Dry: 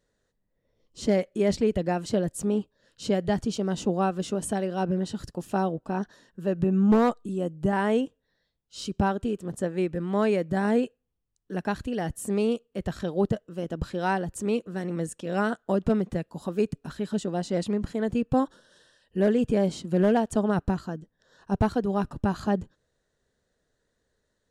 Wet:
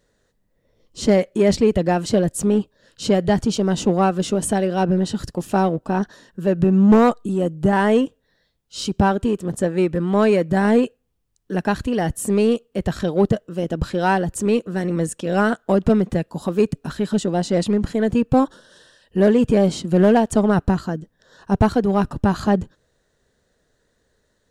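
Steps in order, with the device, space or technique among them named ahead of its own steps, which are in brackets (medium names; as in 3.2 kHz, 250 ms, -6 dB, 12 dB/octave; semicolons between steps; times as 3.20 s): parallel distortion (in parallel at -9 dB: hard clipper -27.5 dBFS, distortion -6 dB); on the sum: trim +6.5 dB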